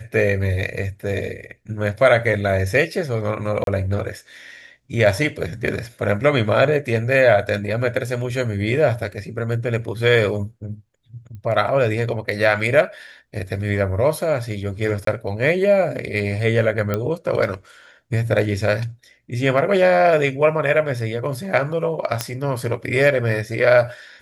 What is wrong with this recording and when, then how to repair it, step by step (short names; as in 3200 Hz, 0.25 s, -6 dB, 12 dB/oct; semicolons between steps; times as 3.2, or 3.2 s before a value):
3.64–3.67 gap 32 ms
11.35 pop -28 dBFS
15.05–15.07 gap 23 ms
16.94 pop -9 dBFS
22.21 pop -5 dBFS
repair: de-click; interpolate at 3.64, 32 ms; interpolate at 15.05, 23 ms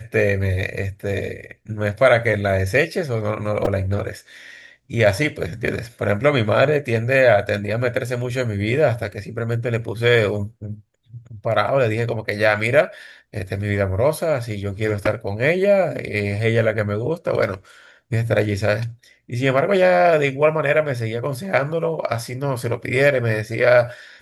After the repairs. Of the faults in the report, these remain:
11.35 pop